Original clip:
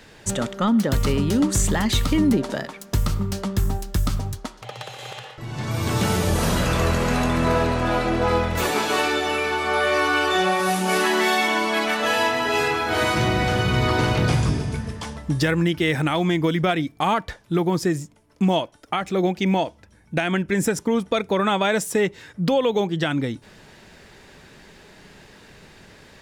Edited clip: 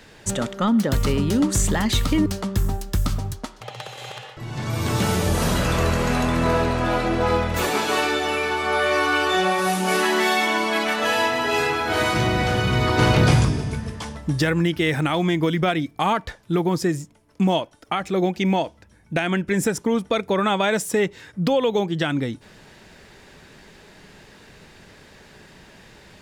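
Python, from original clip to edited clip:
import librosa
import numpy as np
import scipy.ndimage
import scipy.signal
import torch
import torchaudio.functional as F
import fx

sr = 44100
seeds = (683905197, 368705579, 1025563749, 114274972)

y = fx.edit(x, sr, fx.cut(start_s=2.26, length_s=1.01),
    fx.clip_gain(start_s=14.0, length_s=0.46, db=4.0), tone=tone)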